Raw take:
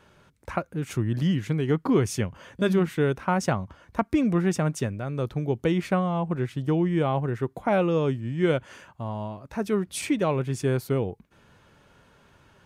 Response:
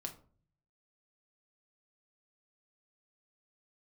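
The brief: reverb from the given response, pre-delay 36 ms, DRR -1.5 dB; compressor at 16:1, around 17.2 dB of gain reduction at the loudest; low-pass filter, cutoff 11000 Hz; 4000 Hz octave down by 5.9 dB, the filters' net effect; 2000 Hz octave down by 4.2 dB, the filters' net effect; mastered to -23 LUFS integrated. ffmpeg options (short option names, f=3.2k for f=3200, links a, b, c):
-filter_complex "[0:a]lowpass=11k,equalizer=f=2k:t=o:g=-4.5,equalizer=f=4k:t=o:g=-6.5,acompressor=threshold=-35dB:ratio=16,asplit=2[a][b];[1:a]atrim=start_sample=2205,adelay=36[c];[b][c]afir=irnorm=-1:irlink=0,volume=4dB[d];[a][d]amix=inputs=2:normalize=0,volume=12dB"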